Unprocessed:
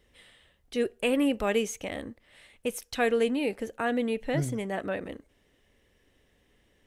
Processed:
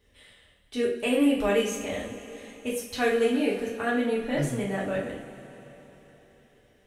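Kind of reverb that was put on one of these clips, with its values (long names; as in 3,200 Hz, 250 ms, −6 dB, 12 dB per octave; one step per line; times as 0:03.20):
coupled-rooms reverb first 0.42 s, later 4.1 s, from −18 dB, DRR −4.5 dB
level −4 dB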